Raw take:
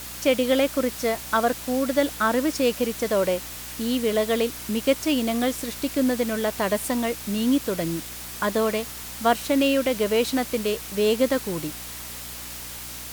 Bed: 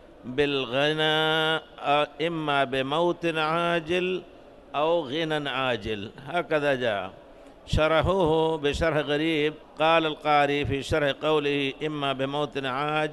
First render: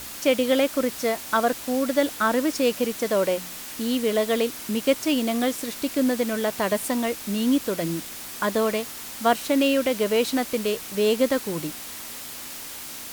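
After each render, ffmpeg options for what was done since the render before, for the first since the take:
-af "bandreject=f=60:t=h:w=4,bandreject=f=120:t=h:w=4,bandreject=f=180:t=h:w=4"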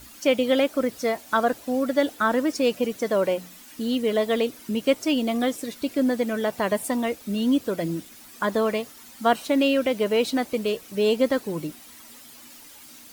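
-af "afftdn=nr=12:nf=-37"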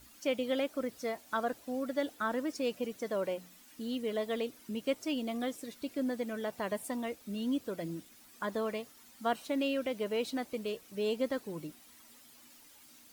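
-af "volume=0.266"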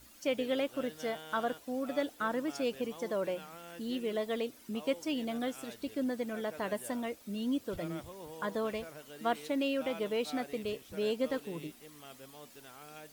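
-filter_complex "[1:a]volume=0.0562[s0];[0:a][s0]amix=inputs=2:normalize=0"

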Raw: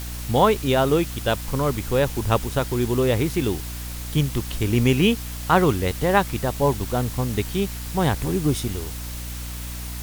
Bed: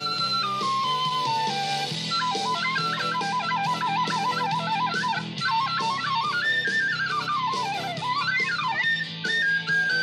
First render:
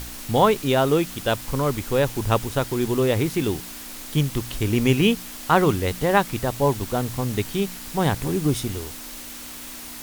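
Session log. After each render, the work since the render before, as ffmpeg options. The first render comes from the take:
-af "bandreject=f=60:t=h:w=4,bandreject=f=120:t=h:w=4,bandreject=f=180:t=h:w=4"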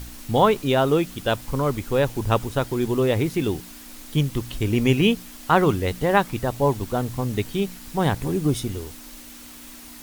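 -af "afftdn=nr=6:nf=-37"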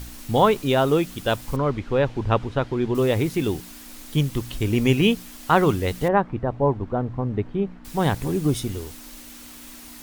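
-filter_complex "[0:a]asettb=1/sr,asplit=3[s0][s1][s2];[s0]atrim=end=1.564[s3];[s1]atrim=start=1.56:end=2.95,asetpts=PTS-STARTPTS,afade=t=in:d=0.004:c=qsin,afade=t=out:st=1.386:d=0.004:c=qsin,lowpass=3300[s4];[s2]atrim=start=2.946[s5];[s3][s4]acrossfade=d=0.004:c1=hsin:c2=qsin[s6];[s6][s5]acrossfade=d=0.004:c1=qsin:c2=hsin,asettb=1/sr,asplit=3[s7][s8][s9];[s7]atrim=end=6.084[s10];[s8]atrim=start=6.08:end=7.85,asetpts=PTS-STARTPTS,afade=t=in:d=0.004:c=qsin,afade=t=out:st=1.766:d=0.004:c=qsin,lowpass=1300[s11];[s9]atrim=start=7.846[s12];[s10][s11]acrossfade=d=0.004:c1=hsin:c2=qsin[s13];[s13][s12]acrossfade=d=0.004:c1=qsin:c2=hsin"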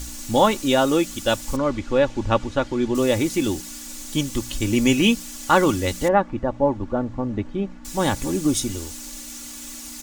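-af "equalizer=f=6900:t=o:w=1:g=11,aecho=1:1:3.5:0.6"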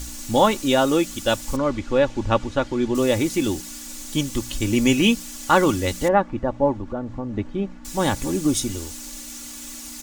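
-filter_complex "[0:a]asettb=1/sr,asplit=3[s0][s1][s2];[s0]atrim=end=6.724[s3];[s1]atrim=start=6.72:end=7.36,asetpts=PTS-STARTPTS,afade=t=in:d=0.004:c=qsin,afade=t=out:st=0.636:d=0.004:c=qsin,acompressor=threshold=0.0447:ratio=2:attack=3.2:release=140:knee=1:detection=peak[s4];[s2]atrim=start=7.356[s5];[s3][s4]acrossfade=d=0.004:c1=hsin:c2=qsin[s6];[s6][s5]acrossfade=d=0.004:c1=qsin:c2=hsin"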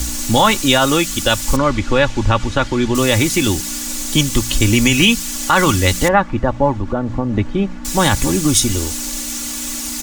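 -filter_complex "[0:a]acrossover=split=170|910[s0][s1][s2];[s1]acompressor=threshold=0.0282:ratio=4[s3];[s0][s3][s2]amix=inputs=3:normalize=0,alimiter=level_in=3.98:limit=0.891:release=50:level=0:latency=1"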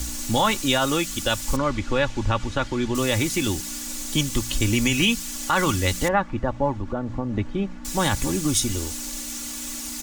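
-af "volume=0.398"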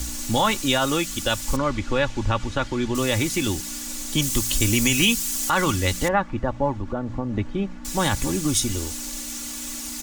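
-filter_complex "[0:a]asettb=1/sr,asplit=3[s0][s1][s2];[s0]atrim=end=4.224[s3];[s1]atrim=start=4.22:end=5.5,asetpts=PTS-STARTPTS,afade=t=in:d=0.004:c=qsin,afade=t=out:st=1.276:d=0.004:c=qsin,highshelf=f=6500:g=10[s4];[s2]atrim=start=5.496[s5];[s3][s4]acrossfade=d=0.004:c1=hsin:c2=qsin[s6];[s6][s5]acrossfade=d=0.004:c1=qsin:c2=hsin"

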